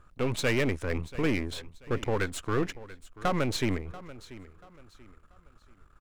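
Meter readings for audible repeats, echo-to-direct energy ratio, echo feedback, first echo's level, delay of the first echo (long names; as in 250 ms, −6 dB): 2, −17.0 dB, 33%, −17.5 dB, 686 ms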